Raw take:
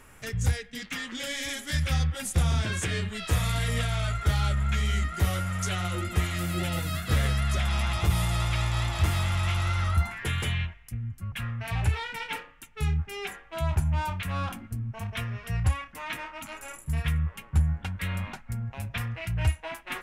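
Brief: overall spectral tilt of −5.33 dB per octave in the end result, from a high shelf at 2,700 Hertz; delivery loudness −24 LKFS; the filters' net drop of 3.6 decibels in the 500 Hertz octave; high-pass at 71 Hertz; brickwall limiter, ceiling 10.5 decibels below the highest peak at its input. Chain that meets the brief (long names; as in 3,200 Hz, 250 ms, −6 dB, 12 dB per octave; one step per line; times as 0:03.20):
high-pass filter 71 Hz
parametric band 500 Hz −4.5 dB
high-shelf EQ 2,700 Hz −7 dB
level +10 dB
brickwall limiter −14 dBFS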